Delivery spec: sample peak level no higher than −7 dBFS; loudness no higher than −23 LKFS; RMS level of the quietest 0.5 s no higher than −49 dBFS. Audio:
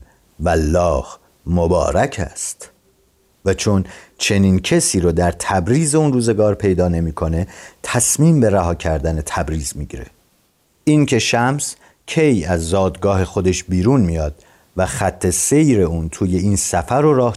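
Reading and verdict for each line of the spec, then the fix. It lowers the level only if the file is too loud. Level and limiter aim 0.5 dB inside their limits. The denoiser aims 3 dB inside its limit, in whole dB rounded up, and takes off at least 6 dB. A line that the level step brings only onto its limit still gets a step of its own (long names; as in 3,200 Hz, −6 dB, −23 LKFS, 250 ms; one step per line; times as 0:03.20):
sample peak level −4.0 dBFS: out of spec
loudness −17.0 LKFS: out of spec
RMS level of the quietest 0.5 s −60 dBFS: in spec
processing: level −6.5 dB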